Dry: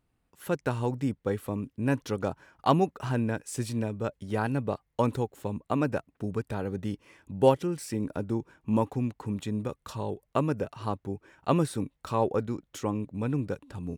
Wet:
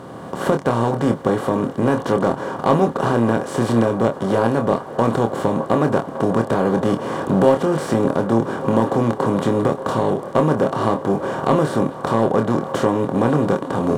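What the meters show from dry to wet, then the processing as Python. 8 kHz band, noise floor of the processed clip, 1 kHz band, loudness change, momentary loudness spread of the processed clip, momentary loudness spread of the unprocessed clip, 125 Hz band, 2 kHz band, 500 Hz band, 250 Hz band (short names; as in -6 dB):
+6.0 dB, -33 dBFS, +12.0 dB, +11.5 dB, 4 LU, 9 LU, +8.5 dB, +12.0 dB, +12.5 dB, +11.5 dB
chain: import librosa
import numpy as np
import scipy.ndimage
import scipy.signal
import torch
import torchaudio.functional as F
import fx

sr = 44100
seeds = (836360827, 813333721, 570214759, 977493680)

p1 = fx.bin_compress(x, sr, power=0.4)
p2 = fx.recorder_agc(p1, sr, target_db=-10.0, rise_db_per_s=11.0, max_gain_db=30)
p3 = scipy.signal.sosfilt(scipy.signal.butter(2, 94.0, 'highpass', fs=sr, output='sos'), p2)
p4 = fx.high_shelf(p3, sr, hz=4600.0, db=-11.0)
p5 = fx.notch(p4, sr, hz=2600.0, q=5.7)
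p6 = np.clip(p5, -10.0 ** (-14.5 / 20.0), 10.0 ** (-14.5 / 20.0))
p7 = p5 + (p6 * librosa.db_to_amplitude(-6.5))
p8 = fx.doubler(p7, sr, ms=26.0, db=-6.5)
y = p8 + fx.echo_wet_bandpass(p8, sr, ms=582, feedback_pct=83, hz=820.0, wet_db=-15.0, dry=0)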